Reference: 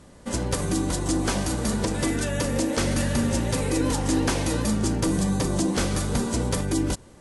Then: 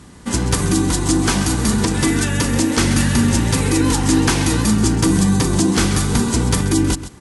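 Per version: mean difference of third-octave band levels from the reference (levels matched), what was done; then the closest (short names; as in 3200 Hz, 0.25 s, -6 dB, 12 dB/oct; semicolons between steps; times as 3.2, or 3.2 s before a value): 2.0 dB: HPF 40 Hz; bell 570 Hz -12.5 dB 0.49 oct; echo 0.132 s -13.5 dB; gain +9 dB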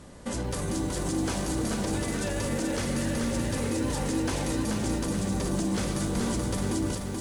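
3.5 dB: in parallel at -1 dB: negative-ratio compressor -27 dBFS; on the sum: limiter -17.5 dBFS, peak gain reduction 9 dB; lo-fi delay 0.431 s, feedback 55%, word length 8-bit, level -4 dB; gain -5 dB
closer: first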